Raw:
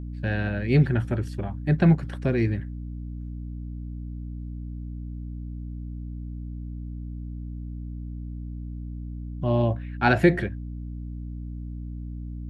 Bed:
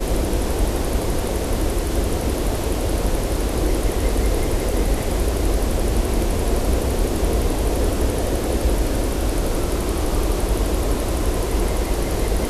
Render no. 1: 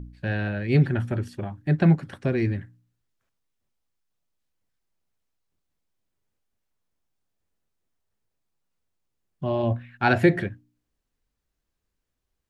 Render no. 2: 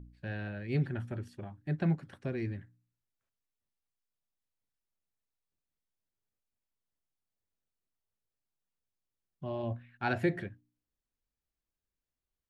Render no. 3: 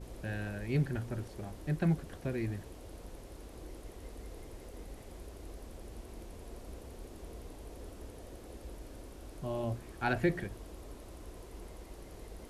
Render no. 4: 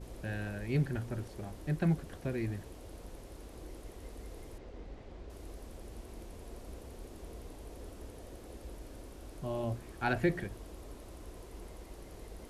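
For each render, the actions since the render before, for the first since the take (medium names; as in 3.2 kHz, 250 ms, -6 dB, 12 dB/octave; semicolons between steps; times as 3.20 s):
de-hum 60 Hz, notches 5
trim -11.5 dB
add bed -27.5 dB
4.58–5.30 s: distance through air 150 m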